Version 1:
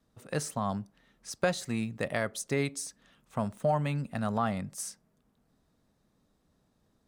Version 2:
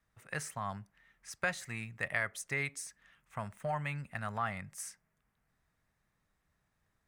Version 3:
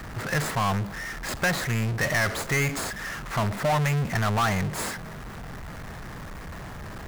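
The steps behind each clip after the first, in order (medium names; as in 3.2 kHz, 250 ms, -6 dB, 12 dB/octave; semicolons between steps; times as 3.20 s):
graphic EQ 250/500/2000/4000 Hz -11/-6/+10/-6 dB; trim -4.5 dB
median filter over 15 samples; power-law waveshaper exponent 0.35; trim +5.5 dB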